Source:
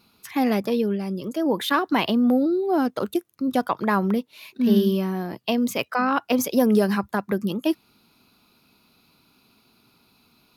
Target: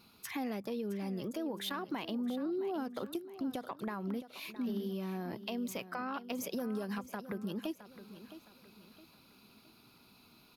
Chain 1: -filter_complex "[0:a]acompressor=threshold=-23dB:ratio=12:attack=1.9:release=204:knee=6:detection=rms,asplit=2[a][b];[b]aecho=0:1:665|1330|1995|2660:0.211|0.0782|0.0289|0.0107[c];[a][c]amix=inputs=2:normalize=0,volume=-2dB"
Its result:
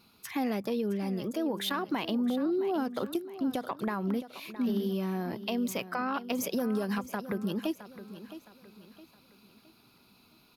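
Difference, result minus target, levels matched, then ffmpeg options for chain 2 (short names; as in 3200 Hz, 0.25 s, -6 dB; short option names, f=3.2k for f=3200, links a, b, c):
compressor: peak gain reduction -7 dB
-filter_complex "[0:a]acompressor=threshold=-30.5dB:ratio=12:attack=1.9:release=204:knee=6:detection=rms,asplit=2[a][b];[b]aecho=0:1:665|1330|1995|2660:0.211|0.0782|0.0289|0.0107[c];[a][c]amix=inputs=2:normalize=0,volume=-2dB"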